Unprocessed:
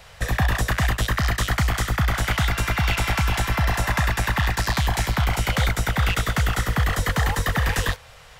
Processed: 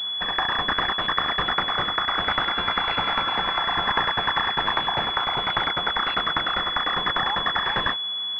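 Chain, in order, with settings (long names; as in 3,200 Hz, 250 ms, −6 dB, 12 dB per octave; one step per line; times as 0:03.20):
high-pass filter 870 Hz 24 dB per octave
switching amplifier with a slow clock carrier 3,400 Hz
level +6.5 dB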